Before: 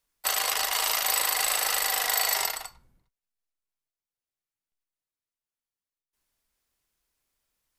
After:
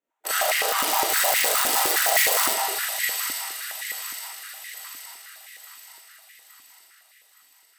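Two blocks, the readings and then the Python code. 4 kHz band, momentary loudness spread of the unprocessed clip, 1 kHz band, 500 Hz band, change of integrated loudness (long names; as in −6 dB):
+3.0 dB, 6 LU, +6.5 dB, +10.5 dB, +3.0 dB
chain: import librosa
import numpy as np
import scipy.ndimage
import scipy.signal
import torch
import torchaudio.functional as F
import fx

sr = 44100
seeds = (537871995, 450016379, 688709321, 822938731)

y = fx.wiener(x, sr, points=9)
y = fx.tilt_shelf(y, sr, db=4.0, hz=1200.0)
y = fx.echo_wet_highpass(y, sr, ms=866, feedback_pct=51, hz=1900.0, wet_db=-3.5)
y = fx.rev_freeverb(y, sr, rt60_s=1.3, hf_ratio=0.65, predelay_ms=5, drr_db=-9.5)
y = (np.mod(10.0 ** (12.0 / 20.0) * y + 1.0, 2.0) - 1.0) / 10.0 ** (12.0 / 20.0)
y = fx.high_shelf(y, sr, hz=4500.0, db=9.5)
y = fx.notch(y, sr, hz=1100.0, q=9.8)
y = fx.filter_held_highpass(y, sr, hz=9.7, low_hz=280.0, high_hz=2000.0)
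y = y * librosa.db_to_amplitude(-7.5)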